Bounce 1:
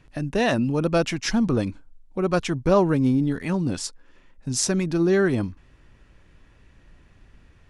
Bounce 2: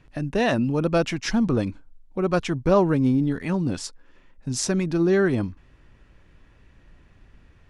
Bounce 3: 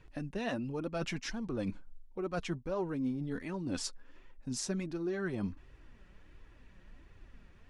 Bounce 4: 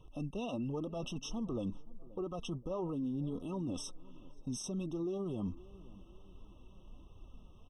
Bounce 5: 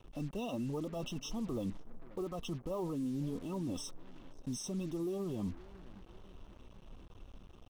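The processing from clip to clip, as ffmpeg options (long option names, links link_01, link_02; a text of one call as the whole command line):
ffmpeg -i in.wav -af "highshelf=frequency=5800:gain=-6" out.wav
ffmpeg -i in.wav -af "areverse,acompressor=threshold=-29dB:ratio=6,areverse,flanger=delay=1.9:depth=3.8:regen=34:speed=1.4:shape=triangular" out.wav
ffmpeg -i in.wav -filter_complex "[0:a]asplit=2[link_01][link_02];[link_02]adelay=526,lowpass=frequency=1200:poles=1,volume=-23dB,asplit=2[link_03][link_04];[link_04]adelay=526,lowpass=frequency=1200:poles=1,volume=0.44,asplit=2[link_05][link_06];[link_06]adelay=526,lowpass=frequency=1200:poles=1,volume=0.44[link_07];[link_01][link_03][link_05][link_07]amix=inputs=4:normalize=0,alimiter=level_in=8dB:limit=-24dB:level=0:latency=1:release=26,volume=-8dB,afftfilt=real='re*eq(mod(floor(b*sr/1024/1300),2),0)':imag='im*eq(mod(floor(b*sr/1024/1300),2),0)':win_size=1024:overlap=0.75,volume=1.5dB" out.wav
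ffmpeg -i in.wav -af "acrusher=bits=8:mix=0:aa=0.5" out.wav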